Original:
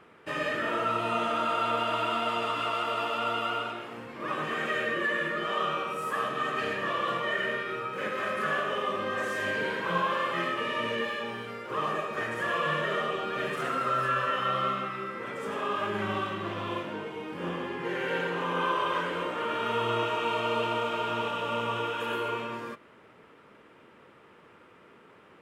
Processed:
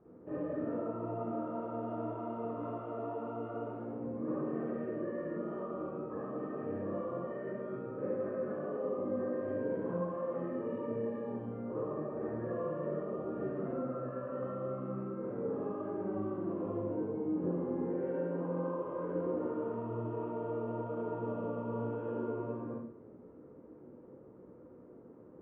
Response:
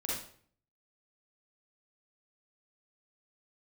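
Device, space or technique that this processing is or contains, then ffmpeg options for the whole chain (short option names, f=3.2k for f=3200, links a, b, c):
television next door: -filter_complex "[0:a]lowpass=f=1.4k:p=1,acompressor=threshold=-33dB:ratio=4,lowpass=510[a];[1:a]atrim=start_sample=2205[b];[a][b]afir=irnorm=-1:irlink=0"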